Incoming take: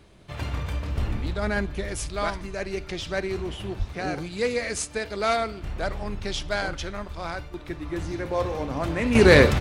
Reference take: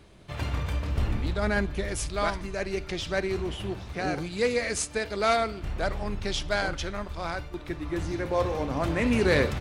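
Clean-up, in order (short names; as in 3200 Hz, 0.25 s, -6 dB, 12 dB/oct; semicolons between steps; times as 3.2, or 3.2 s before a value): de-plosive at 3.78; gain correction -8.5 dB, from 9.15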